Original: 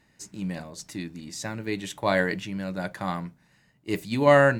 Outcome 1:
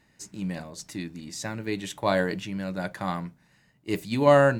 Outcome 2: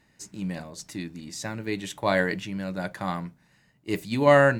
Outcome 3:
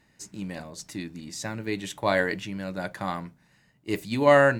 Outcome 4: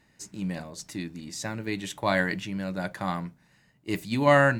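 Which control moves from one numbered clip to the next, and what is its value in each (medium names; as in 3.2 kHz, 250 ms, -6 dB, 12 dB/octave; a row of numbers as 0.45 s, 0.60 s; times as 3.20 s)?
dynamic bell, frequency: 2 kHz, 7.3 kHz, 170 Hz, 460 Hz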